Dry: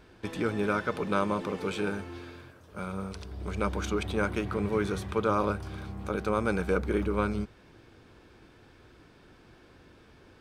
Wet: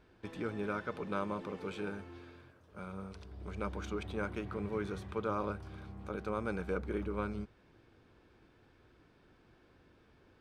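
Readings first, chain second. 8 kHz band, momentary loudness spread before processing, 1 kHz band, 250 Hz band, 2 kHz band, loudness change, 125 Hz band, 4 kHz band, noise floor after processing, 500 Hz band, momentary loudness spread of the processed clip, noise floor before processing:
−13.5 dB, 12 LU, −9.0 dB, −8.5 dB, −9.0 dB, −8.5 dB, −8.5 dB, −11.0 dB, −66 dBFS, −8.5 dB, 12 LU, −57 dBFS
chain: high-shelf EQ 5,200 Hz −8 dB
level −8.5 dB

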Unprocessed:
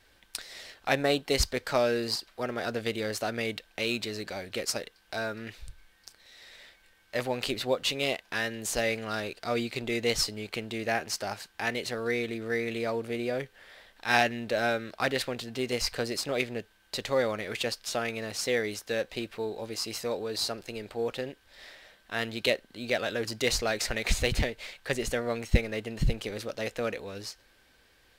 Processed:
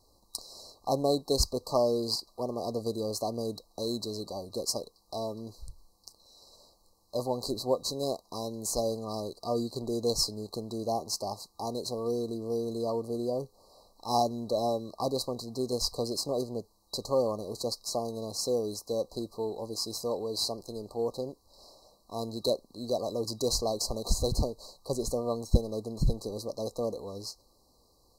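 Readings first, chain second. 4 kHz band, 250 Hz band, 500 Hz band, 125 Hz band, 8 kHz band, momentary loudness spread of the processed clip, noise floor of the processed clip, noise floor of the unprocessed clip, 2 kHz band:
−2.5 dB, 0.0 dB, 0.0 dB, 0.0 dB, 0.0 dB, 10 LU, −66 dBFS, −63 dBFS, below −40 dB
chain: brick-wall band-stop 1,200–3,900 Hz

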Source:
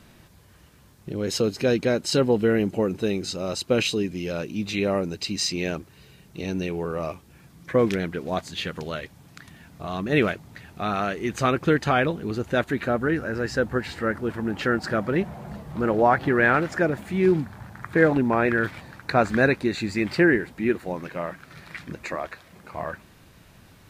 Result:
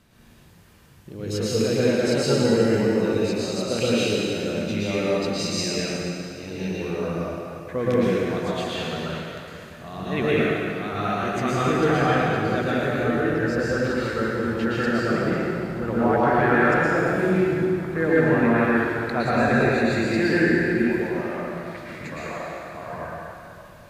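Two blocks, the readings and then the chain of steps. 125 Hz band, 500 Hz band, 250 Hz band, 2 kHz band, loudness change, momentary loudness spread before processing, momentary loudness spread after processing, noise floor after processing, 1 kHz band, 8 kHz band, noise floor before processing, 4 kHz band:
+2.5 dB, +2.0 dB, +2.5 dB, +1.5 dB, +2.0 dB, 15 LU, 14 LU, −45 dBFS, +1.5 dB, +1.5 dB, −53 dBFS, +1.0 dB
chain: dense smooth reverb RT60 2.7 s, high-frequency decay 0.85×, pre-delay 100 ms, DRR −8.5 dB
level −7.5 dB

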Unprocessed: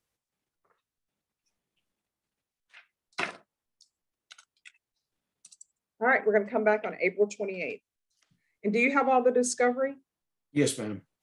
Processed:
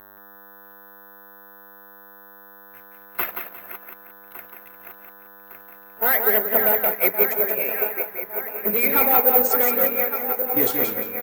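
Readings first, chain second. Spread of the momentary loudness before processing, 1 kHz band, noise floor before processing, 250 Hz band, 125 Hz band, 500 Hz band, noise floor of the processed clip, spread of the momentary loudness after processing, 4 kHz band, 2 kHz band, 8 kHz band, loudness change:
12 LU, +4.0 dB, below −85 dBFS, −0.5 dB, can't be measured, +2.5 dB, −46 dBFS, 13 LU, +3.0 dB, +3.5 dB, +1.0 dB, +9.0 dB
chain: feedback delay that plays each chunk backwards 579 ms, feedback 74%, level −10.5 dB
low-pass that shuts in the quiet parts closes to 1,800 Hz, open at −20 dBFS
echo ahead of the sound 41 ms −23 dB
in parallel at 0 dB: brickwall limiter −19 dBFS, peak gain reduction 8 dB
on the sum: mid-hump overdrive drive 16 dB, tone 1,700 Hz, clips at −8 dBFS
hum with harmonics 100 Hz, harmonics 18, −39 dBFS 0 dB per octave
dead-zone distortion −50.5 dBFS
harmonic and percussive parts rebalanced harmonic −3 dB
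on a send: repeating echo 176 ms, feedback 35%, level −4.5 dB
on the sum: bad sample-rate conversion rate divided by 3×, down none, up zero stuff
expander for the loud parts 1.5 to 1, over −24 dBFS
level −2.5 dB

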